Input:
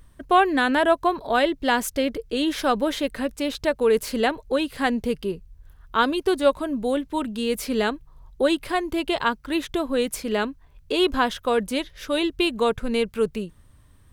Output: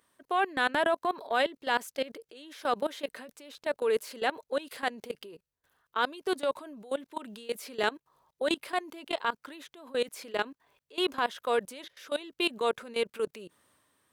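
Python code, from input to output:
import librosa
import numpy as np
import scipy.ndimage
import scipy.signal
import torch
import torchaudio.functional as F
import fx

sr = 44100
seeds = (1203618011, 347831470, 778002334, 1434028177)

y = scipy.signal.sosfilt(scipy.signal.butter(2, 390.0, 'highpass', fs=sr, output='sos'), x)
y = fx.level_steps(y, sr, step_db=24)
y = fx.transient(y, sr, attack_db=-5, sustain_db=4)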